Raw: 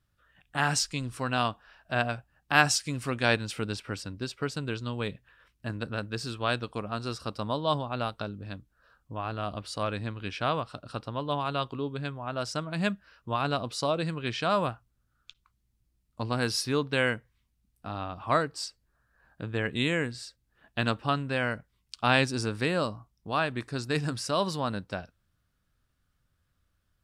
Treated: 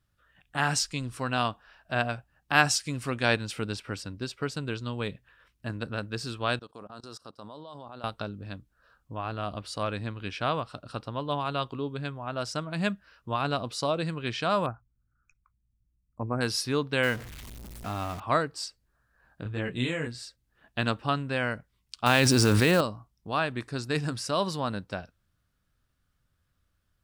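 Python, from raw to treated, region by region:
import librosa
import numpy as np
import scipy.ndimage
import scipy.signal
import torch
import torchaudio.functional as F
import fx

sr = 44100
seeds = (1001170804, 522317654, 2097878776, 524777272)

y = fx.chain(x, sr, fx.highpass(hz=300.0, slope=6),
    fx.peak_eq(hz=2300.0, db=-10.5, octaves=0.68),
    fx.level_steps(step_db=22), at=(6.59, 8.04))
y = fx.chain(y, sr, fx.envelope_sharpen(power=1.5),
    fx.cheby1_bandstop(low_hz=2500.0, high_hz=5500.0, order=5), at=(14.66, 16.41))
y = fx.chain(y, sr, fx.zero_step(step_db=-36.5),
    fx.quant_companded(bits=6), at=(17.03, 18.2))
y = fx.chain(y, sr, fx.low_shelf(hz=200.0, db=4.5),
    fx.detune_double(cents=16), at=(19.43, 20.07))
y = fx.chain(y, sr, fx.block_float(bits=5),
    fx.env_flatten(amount_pct=100), at=(22.06, 22.81))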